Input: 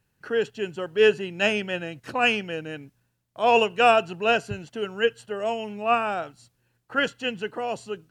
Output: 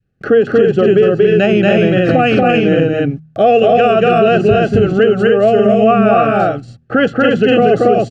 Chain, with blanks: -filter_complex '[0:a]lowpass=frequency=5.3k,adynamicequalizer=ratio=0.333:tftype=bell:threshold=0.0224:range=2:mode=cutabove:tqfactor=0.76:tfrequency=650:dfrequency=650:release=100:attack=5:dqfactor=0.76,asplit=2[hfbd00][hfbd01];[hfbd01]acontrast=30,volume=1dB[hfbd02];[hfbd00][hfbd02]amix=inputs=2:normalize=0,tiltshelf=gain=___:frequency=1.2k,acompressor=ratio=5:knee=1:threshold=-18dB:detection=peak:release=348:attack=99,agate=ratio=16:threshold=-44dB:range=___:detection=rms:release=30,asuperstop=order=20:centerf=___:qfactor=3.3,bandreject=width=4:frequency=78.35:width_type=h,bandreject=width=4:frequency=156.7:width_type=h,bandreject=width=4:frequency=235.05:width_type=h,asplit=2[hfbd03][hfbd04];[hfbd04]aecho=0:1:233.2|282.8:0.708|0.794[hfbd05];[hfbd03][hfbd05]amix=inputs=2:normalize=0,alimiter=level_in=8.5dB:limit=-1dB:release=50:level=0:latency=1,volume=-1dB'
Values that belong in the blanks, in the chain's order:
8, -18dB, 960